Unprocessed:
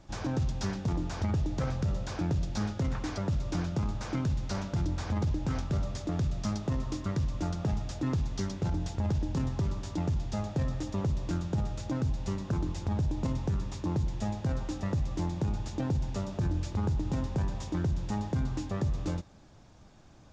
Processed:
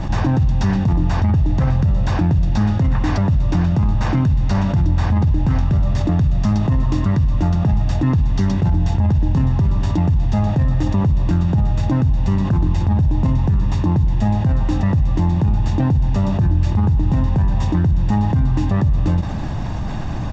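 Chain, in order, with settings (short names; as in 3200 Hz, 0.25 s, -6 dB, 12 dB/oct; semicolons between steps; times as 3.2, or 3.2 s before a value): tone controls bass +4 dB, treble -11 dB; comb 1.1 ms, depth 38%; fast leveller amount 70%; gain +6.5 dB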